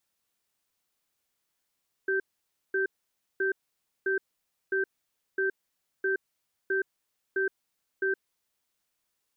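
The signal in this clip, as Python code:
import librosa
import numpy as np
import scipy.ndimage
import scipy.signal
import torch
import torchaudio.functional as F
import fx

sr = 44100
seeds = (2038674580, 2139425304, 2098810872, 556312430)

y = fx.cadence(sr, length_s=6.39, low_hz=385.0, high_hz=1560.0, on_s=0.12, off_s=0.54, level_db=-27.0)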